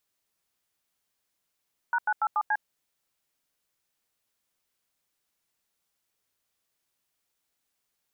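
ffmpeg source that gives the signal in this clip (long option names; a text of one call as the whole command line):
ffmpeg -f lavfi -i "aevalsrc='0.0562*clip(min(mod(t,0.143),0.054-mod(t,0.143))/0.002,0,1)*(eq(floor(t/0.143),0)*(sin(2*PI*941*mod(t,0.143))+sin(2*PI*1477*mod(t,0.143)))+eq(floor(t/0.143),1)*(sin(2*PI*852*mod(t,0.143))+sin(2*PI*1477*mod(t,0.143)))+eq(floor(t/0.143),2)*(sin(2*PI*852*mod(t,0.143))+sin(2*PI*1336*mod(t,0.143)))+eq(floor(t/0.143),3)*(sin(2*PI*852*mod(t,0.143))+sin(2*PI*1209*mod(t,0.143)))+eq(floor(t/0.143),4)*(sin(2*PI*852*mod(t,0.143))+sin(2*PI*1633*mod(t,0.143))))':duration=0.715:sample_rate=44100" out.wav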